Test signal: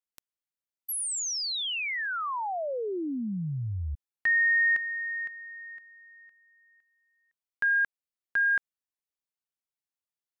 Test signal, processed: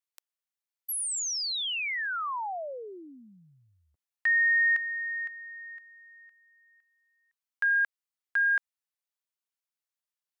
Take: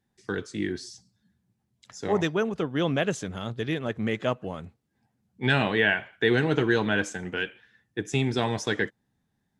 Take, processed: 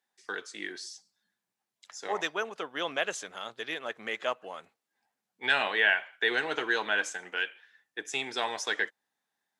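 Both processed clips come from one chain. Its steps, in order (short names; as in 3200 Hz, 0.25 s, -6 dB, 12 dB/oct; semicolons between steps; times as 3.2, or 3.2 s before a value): HPF 720 Hz 12 dB/oct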